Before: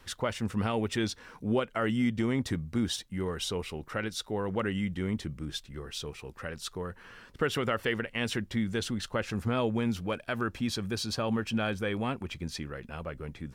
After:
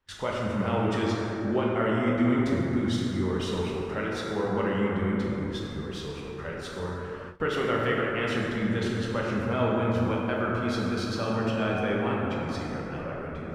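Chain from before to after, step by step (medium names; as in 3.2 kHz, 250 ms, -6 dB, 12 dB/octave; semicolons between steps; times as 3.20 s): bass shelf 350 Hz -3 dB; plate-style reverb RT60 3.9 s, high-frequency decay 0.35×, DRR -4.5 dB; gate with hold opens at -29 dBFS; low-pass 2.5 kHz 6 dB/octave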